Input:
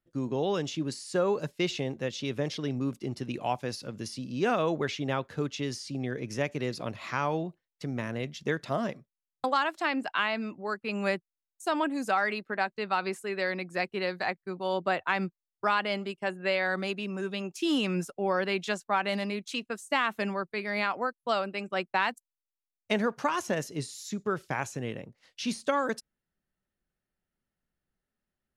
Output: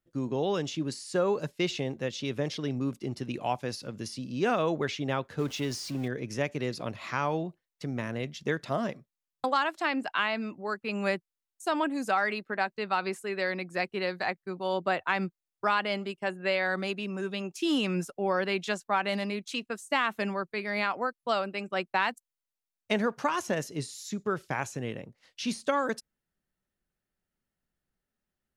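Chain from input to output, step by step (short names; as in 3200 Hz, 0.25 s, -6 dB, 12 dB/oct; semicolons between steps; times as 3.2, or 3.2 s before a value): 5.39–6.08 zero-crossing step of -41.5 dBFS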